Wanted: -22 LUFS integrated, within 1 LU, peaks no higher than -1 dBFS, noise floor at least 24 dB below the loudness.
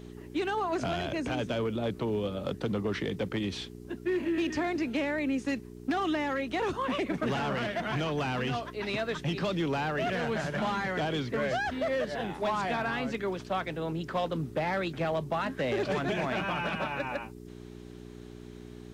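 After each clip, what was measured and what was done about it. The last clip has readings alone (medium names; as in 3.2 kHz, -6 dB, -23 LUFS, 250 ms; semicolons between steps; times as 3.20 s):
clipped samples 1.0%; clipping level -23.5 dBFS; hum 60 Hz; highest harmonic 420 Hz; hum level -44 dBFS; loudness -31.5 LUFS; peak level -23.5 dBFS; loudness target -22.0 LUFS
-> clip repair -23.5 dBFS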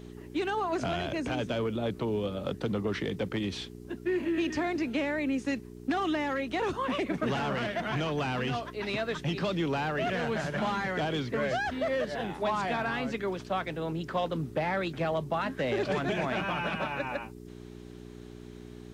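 clipped samples 0.0%; hum 60 Hz; highest harmonic 420 Hz; hum level -44 dBFS
-> de-hum 60 Hz, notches 7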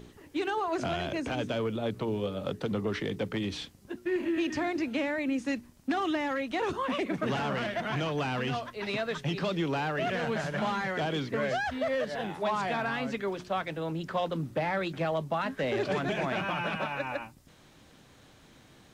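hum not found; loudness -31.5 LUFS; peak level -19.0 dBFS; loudness target -22.0 LUFS
-> trim +9.5 dB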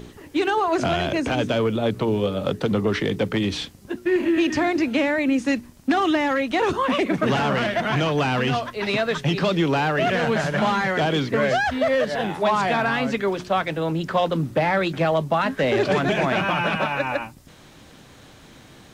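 loudness -22.0 LUFS; peak level -9.5 dBFS; noise floor -48 dBFS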